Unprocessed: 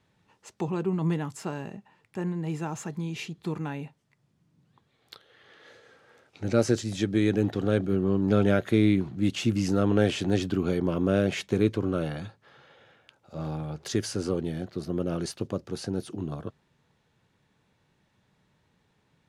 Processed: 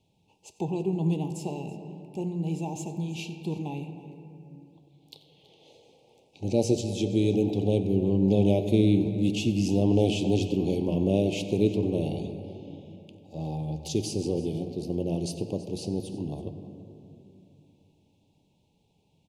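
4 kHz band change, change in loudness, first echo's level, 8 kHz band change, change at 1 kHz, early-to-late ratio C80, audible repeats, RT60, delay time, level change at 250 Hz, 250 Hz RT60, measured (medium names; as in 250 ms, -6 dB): -0.5 dB, +0.5 dB, -18.5 dB, 0.0 dB, -2.5 dB, 9.0 dB, 2, 2.7 s, 93 ms, +0.5 dB, 3.5 s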